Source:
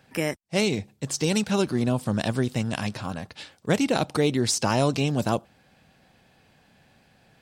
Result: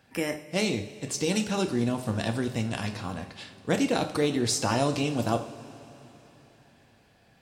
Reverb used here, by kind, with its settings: two-slope reverb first 0.43 s, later 3.9 s, from -18 dB, DRR 5 dB; gain -3.5 dB

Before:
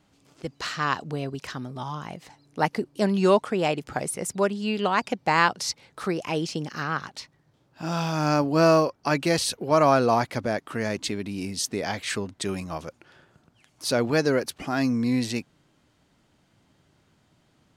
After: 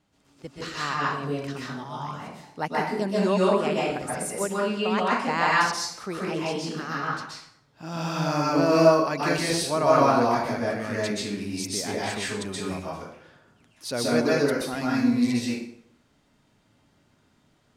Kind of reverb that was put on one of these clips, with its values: plate-style reverb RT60 0.7 s, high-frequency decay 0.75×, pre-delay 0.115 s, DRR -6 dB; gain -6.5 dB

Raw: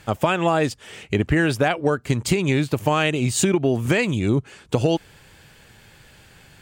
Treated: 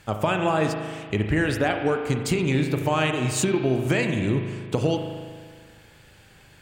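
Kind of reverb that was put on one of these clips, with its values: spring tank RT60 1.8 s, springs 38 ms, chirp 35 ms, DRR 4.5 dB; gain -4 dB

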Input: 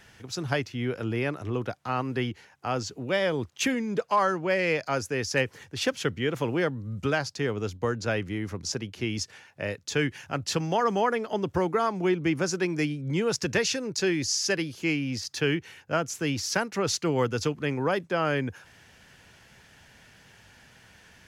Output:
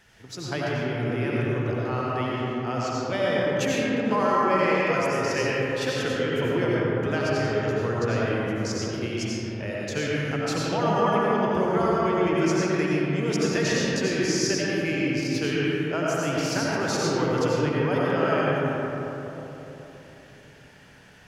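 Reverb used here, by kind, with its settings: digital reverb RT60 3.8 s, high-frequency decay 0.35×, pre-delay 50 ms, DRR -6.5 dB; gain -4.5 dB

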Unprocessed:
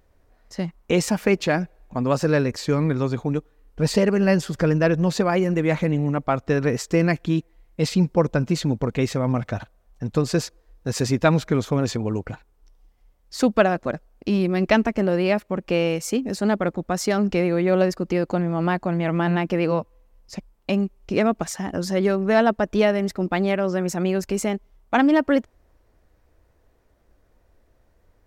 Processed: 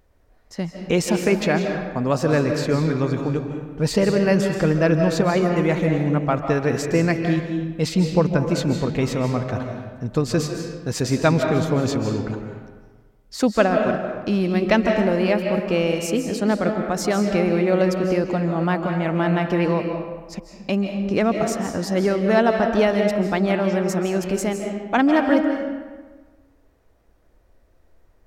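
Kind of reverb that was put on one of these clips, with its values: digital reverb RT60 1.4 s, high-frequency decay 0.65×, pre-delay 0.115 s, DRR 4 dB

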